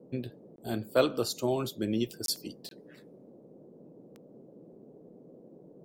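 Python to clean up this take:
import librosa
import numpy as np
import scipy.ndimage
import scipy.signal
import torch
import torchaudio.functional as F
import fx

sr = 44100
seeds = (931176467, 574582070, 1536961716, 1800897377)

y = fx.fix_declick_ar(x, sr, threshold=10.0)
y = fx.fix_interpolate(y, sr, at_s=(0.56, 2.26, 2.69), length_ms=22.0)
y = fx.noise_reduce(y, sr, print_start_s=3.0, print_end_s=3.5, reduce_db=24.0)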